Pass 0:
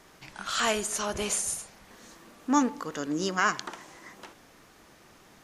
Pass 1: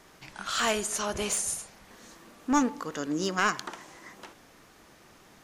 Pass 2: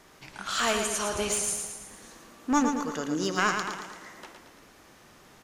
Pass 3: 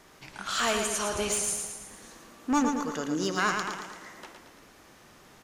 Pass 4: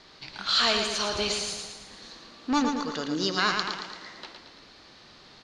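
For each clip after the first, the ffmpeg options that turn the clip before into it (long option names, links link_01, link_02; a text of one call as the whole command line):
ffmpeg -i in.wav -af "aeval=exprs='clip(val(0),-1,0.075)':channel_layout=same" out.wav
ffmpeg -i in.wav -af "aecho=1:1:113|226|339|452|565|678:0.501|0.261|0.136|0.0705|0.0366|0.0191" out.wav
ffmpeg -i in.wav -af "asoftclip=type=tanh:threshold=-14.5dB" out.wav
ffmpeg -i in.wav -af "lowpass=frequency=4300:width_type=q:width=5.3" out.wav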